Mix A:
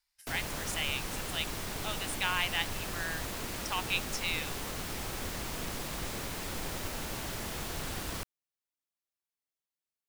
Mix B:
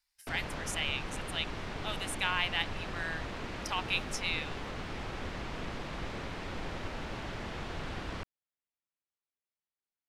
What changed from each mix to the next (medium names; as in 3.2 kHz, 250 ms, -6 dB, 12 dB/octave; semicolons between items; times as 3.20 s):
background: add low-pass 3.1 kHz 12 dB/octave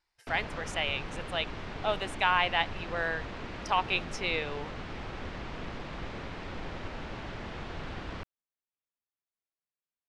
speech: remove amplifier tone stack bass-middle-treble 10-0-10; master: add distance through air 70 m